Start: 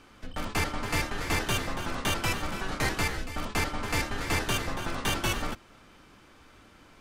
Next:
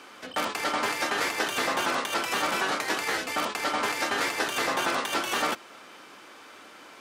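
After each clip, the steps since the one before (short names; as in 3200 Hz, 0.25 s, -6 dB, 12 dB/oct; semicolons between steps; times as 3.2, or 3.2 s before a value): HPF 390 Hz 12 dB/oct; negative-ratio compressor -33 dBFS, ratio -0.5; gain +7 dB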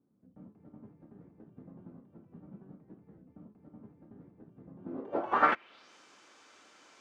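low-pass sweep 170 Hz -> 6800 Hz, 4.78–5.93; upward expander 1.5:1, over -44 dBFS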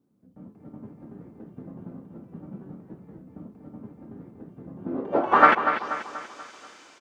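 AGC gain up to 6 dB; on a send: feedback echo 0.241 s, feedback 47%, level -9 dB; on the sum: gain +4 dB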